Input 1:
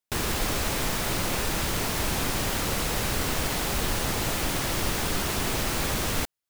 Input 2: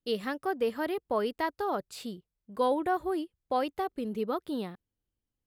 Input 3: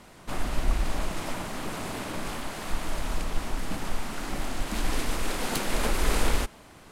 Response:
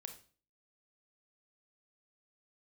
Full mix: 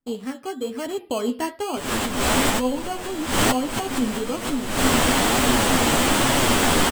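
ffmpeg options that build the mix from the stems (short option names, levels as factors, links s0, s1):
-filter_complex "[0:a]equalizer=f=870:w=0.35:g=8.5,adelay=1650,volume=1.33[s0];[1:a]volume=1.26,asplit=3[s1][s2][s3];[s2]volume=0.631[s4];[2:a]adelay=1800,volume=0.794[s5];[s3]apad=whole_len=359083[s6];[s0][s6]sidechaincompress=threshold=0.00631:ratio=16:attack=22:release=152[s7];[s1][s5]amix=inputs=2:normalize=0,acrusher=samples=12:mix=1:aa=0.000001,acompressor=threshold=0.0224:ratio=3,volume=1[s8];[3:a]atrim=start_sample=2205[s9];[s4][s9]afir=irnorm=-1:irlink=0[s10];[s7][s8][s10]amix=inputs=3:normalize=0,equalizer=f=250:t=o:w=0.33:g=11,equalizer=f=3150:t=o:w=0.33:g=5,equalizer=f=8000:t=o:w=0.33:g=9,dynaudnorm=f=110:g=13:m=2.24,flanger=delay=6.8:depth=6.7:regen=36:speed=1.1:shape=triangular"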